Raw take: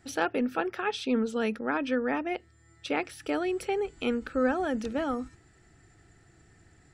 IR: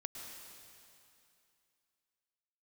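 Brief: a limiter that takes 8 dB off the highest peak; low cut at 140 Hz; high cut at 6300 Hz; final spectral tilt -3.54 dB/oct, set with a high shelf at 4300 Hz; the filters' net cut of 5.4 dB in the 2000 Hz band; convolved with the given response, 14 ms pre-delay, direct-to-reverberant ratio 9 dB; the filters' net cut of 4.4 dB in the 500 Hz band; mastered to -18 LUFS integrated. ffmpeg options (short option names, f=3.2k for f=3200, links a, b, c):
-filter_complex "[0:a]highpass=140,lowpass=6.3k,equalizer=f=500:t=o:g=-5,equalizer=f=2k:t=o:g=-6,highshelf=f=4.3k:g=-4.5,alimiter=level_in=0.5dB:limit=-24dB:level=0:latency=1,volume=-0.5dB,asplit=2[a][b];[1:a]atrim=start_sample=2205,adelay=14[c];[b][c]afir=irnorm=-1:irlink=0,volume=-7dB[d];[a][d]amix=inputs=2:normalize=0,volume=16.5dB"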